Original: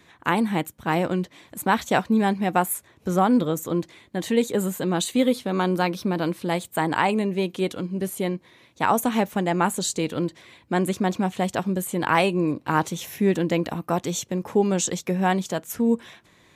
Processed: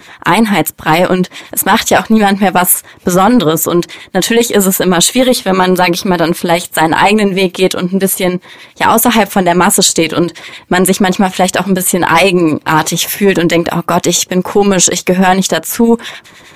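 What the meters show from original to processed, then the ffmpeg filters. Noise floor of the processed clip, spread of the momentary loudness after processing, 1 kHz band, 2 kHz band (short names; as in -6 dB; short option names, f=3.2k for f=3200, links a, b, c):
-39 dBFS, 6 LU, +13.0 dB, +15.0 dB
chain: -filter_complex "[0:a]lowshelf=f=440:g=-8.5,acrossover=split=1400[a][b];[a]aeval=exprs='val(0)*(1-0.7/2+0.7/2*cos(2*PI*9.8*n/s))':c=same[c];[b]aeval=exprs='val(0)*(1-0.7/2-0.7/2*cos(2*PI*9.8*n/s))':c=same[d];[c][d]amix=inputs=2:normalize=0,apsyclip=26dB,volume=-2dB"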